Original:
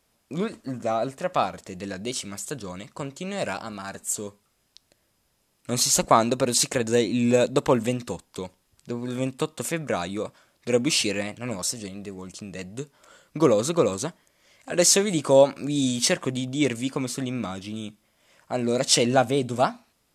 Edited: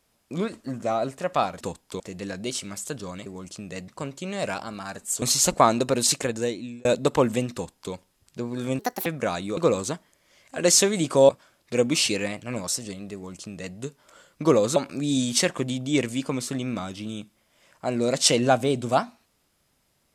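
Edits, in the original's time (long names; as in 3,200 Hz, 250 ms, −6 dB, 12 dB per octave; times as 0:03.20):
0:04.21–0:05.73: remove
0:06.62–0:07.36: fade out
0:08.05–0:08.44: duplicate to 0:01.61
0:09.30–0:09.73: play speed 159%
0:12.09–0:12.71: duplicate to 0:02.87
0:13.71–0:15.43: move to 0:10.24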